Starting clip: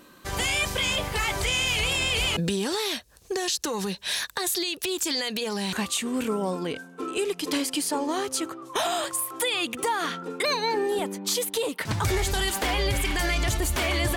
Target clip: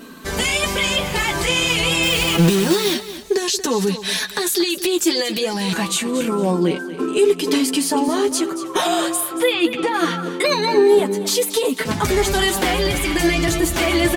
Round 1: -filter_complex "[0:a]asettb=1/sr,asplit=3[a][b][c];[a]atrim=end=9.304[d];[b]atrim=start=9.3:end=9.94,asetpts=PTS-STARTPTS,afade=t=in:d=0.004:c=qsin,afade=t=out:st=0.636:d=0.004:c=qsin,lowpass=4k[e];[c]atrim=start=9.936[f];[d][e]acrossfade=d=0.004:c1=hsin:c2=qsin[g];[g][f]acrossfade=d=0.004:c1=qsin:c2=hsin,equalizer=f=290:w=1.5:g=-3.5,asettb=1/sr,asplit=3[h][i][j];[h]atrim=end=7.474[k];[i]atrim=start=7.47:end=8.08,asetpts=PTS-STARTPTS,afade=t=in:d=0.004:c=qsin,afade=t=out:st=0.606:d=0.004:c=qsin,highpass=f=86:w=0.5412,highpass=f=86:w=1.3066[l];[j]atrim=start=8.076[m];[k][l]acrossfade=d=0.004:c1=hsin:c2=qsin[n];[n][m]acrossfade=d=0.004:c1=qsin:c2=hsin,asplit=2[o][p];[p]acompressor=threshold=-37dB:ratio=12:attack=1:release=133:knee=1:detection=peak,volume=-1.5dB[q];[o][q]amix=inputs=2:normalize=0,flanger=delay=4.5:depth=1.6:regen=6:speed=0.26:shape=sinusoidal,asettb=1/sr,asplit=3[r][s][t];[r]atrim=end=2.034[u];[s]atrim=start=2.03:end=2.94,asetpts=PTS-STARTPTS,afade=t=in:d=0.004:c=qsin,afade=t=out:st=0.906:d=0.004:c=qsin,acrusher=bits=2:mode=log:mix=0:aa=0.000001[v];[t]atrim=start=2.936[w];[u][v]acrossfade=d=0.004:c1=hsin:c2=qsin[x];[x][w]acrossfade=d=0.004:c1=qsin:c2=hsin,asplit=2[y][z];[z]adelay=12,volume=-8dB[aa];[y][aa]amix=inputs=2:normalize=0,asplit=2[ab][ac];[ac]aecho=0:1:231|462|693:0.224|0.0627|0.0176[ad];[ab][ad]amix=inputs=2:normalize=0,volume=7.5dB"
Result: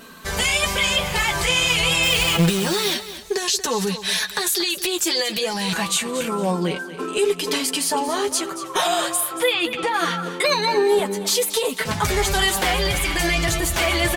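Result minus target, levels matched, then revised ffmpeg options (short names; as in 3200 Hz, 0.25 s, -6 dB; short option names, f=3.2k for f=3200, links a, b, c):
250 Hz band -5.0 dB
-filter_complex "[0:a]asettb=1/sr,asplit=3[a][b][c];[a]atrim=end=9.304[d];[b]atrim=start=9.3:end=9.94,asetpts=PTS-STARTPTS,afade=t=in:d=0.004:c=qsin,afade=t=out:st=0.636:d=0.004:c=qsin,lowpass=4k[e];[c]atrim=start=9.936[f];[d][e]acrossfade=d=0.004:c1=hsin:c2=qsin[g];[g][f]acrossfade=d=0.004:c1=qsin:c2=hsin,equalizer=f=290:w=1.5:g=8,asettb=1/sr,asplit=3[h][i][j];[h]atrim=end=7.474[k];[i]atrim=start=7.47:end=8.08,asetpts=PTS-STARTPTS,afade=t=in:d=0.004:c=qsin,afade=t=out:st=0.606:d=0.004:c=qsin,highpass=f=86:w=0.5412,highpass=f=86:w=1.3066[l];[j]atrim=start=8.076[m];[k][l]acrossfade=d=0.004:c1=hsin:c2=qsin[n];[n][m]acrossfade=d=0.004:c1=qsin:c2=hsin,asplit=2[o][p];[p]acompressor=threshold=-37dB:ratio=12:attack=1:release=133:knee=1:detection=peak,volume=-1.5dB[q];[o][q]amix=inputs=2:normalize=0,flanger=delay=4.5:depth=1.6:regen=6:speed=0.26:shape=sinusoidal,asettb=1/sr,asplit=3[r][s][t];[r]atrim=end=2.034[u];[s]atrim=start=2.03:end=2.94,asetpts=PTS-STARTPTS,afade=t=in:d=0.004:c=qsin,afade=t=out:st=0.906:d=0.004:c=qsin,acrusher=bits=2:mode=log:mix=0:aa=0.000001[v];[t]atrim=start=2.936[w];[u][v]acrossfade=d=0.004:c1=hsin:c2=qsin[x];[x][w]acrossfade=d=0.004:c1=qsin:c2=hsin,asplit=2[y][z];[z]adelay=12,volume=-8dB[aa];[y][aa]amix=inputs=2:normalize=0,asplit=2[ab][ac];[ac]aecho=0:1:231|462|693:0.224|0.0627|0.0176[ad];[ab][ad]amix=inputs=2:normalize=0,volume=7.5dB"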